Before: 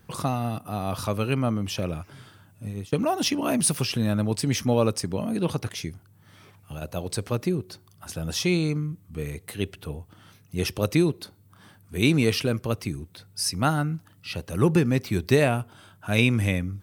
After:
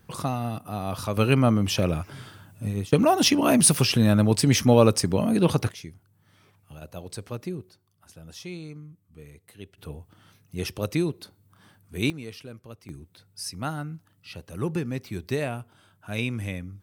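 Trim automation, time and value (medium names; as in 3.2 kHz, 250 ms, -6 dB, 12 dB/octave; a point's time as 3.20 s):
-1.5 dB
from 1.17 s +5 dB
from 5.71 s -7.5 dB
from 7.69 s -14.5 dB
from 9.78 s -4 dB
from 12.10 s -17 dB
from 12.89 s -8 dB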